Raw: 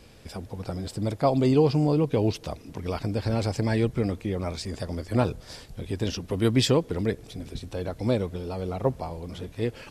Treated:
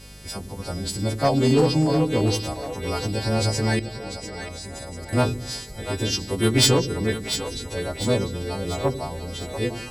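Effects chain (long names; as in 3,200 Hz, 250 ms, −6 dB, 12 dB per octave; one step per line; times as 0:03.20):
every partial snapped to a pitch grid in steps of 2 semitones
0:03.79–0:05.13: output level in coarse steps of 20 dB
mains hum 50 Hz, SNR 21 dB
asymmetric clip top −17.5 dBFS
on a send: echo with a time of its own for lows and highs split 420 Hz, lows 93 ms, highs 694 ms, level −9 dB
on the sum: level +3 dB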